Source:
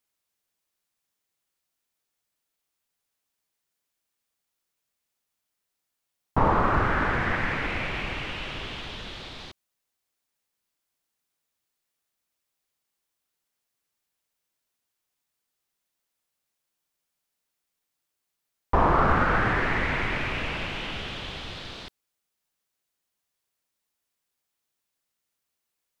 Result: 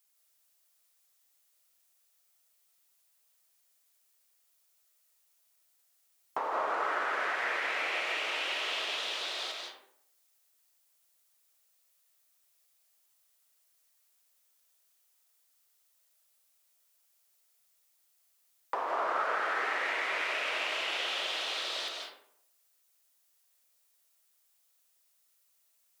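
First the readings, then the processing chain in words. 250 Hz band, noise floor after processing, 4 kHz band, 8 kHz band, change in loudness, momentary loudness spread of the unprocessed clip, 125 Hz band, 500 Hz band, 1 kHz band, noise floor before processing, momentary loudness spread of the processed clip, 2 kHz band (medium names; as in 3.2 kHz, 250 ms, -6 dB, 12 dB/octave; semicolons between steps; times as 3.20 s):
-20.5 dB, -72 dBFS, +2.5 dB, no reading, -6.0 dB, 16 LU, under -40 dB, -7.0 dB, -7.0 dB, -83 dBFS, 7 LU, -4.0 dB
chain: high-pass 430 Hz 24 dB/octave; treble shelf 4.7 kHz +11 dB; compression 5:1, threshold -33 dBFS, peak gain reduction 13.5 dB; algorithmic reverb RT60 0.68 s, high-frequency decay 0.55×, pre-delay 120 ms, DRR 0 dB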